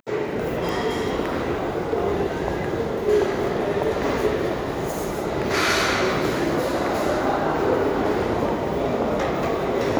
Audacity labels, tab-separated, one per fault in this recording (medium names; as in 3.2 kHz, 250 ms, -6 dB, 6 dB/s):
0.690000	0.690000	pop